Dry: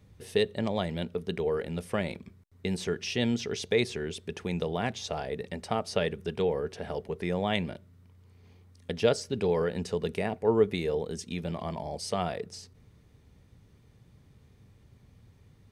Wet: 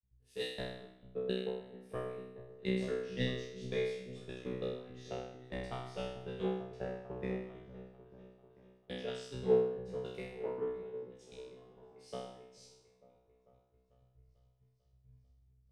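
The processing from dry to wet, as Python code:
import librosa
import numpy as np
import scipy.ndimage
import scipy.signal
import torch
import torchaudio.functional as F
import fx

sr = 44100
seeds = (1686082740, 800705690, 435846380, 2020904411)

p1 = fx.high_shelf(x, sr, hz=6000.0, db=-5.0)
p2 = fx.over_compress(p1, sr, threshold_db=-38.0, ratio=-1.0)
p3 = p1 + F.gain(torch.from_numpy(p2), -1.0).numpy()
p4 = fx.transient(p3, sr, attack_db=12, sustain_db=-3)
p5 = fx.level_steps(p4, sr, step_db=22)
p6 = fx.comb_fb(p5, sr, f0_hz=63.0, decay_s=1.2, harmonics='all', damping=0.0, mix_pct=100)
p7 = p6 + fx.echo_opening(p6, sr, ms=445, hz=400, octaves=1, feedback_pct=70, wet_db=-6, dry=0)
p8 = fx.band_widen(p7, sr, depth_pct=100)
y = F.gain(torch.from_numpy(p8), 2.0).numpy()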